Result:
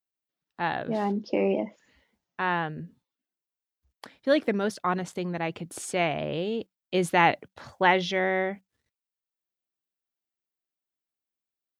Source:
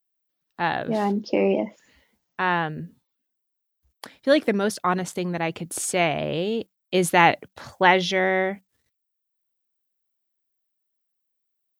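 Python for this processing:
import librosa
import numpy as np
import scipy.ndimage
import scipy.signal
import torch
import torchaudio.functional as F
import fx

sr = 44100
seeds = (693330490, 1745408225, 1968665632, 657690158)

y = fx.high_shelf(x, sr, hz=7700.0, db=-10.5)
y = y * librosa.db_to_amplitude(-4.0)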